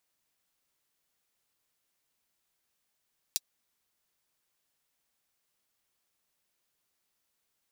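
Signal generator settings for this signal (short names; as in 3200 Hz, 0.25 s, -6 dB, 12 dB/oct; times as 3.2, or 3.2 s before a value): closed hi-hat, high-pass 4300 Hz, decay 0.04 s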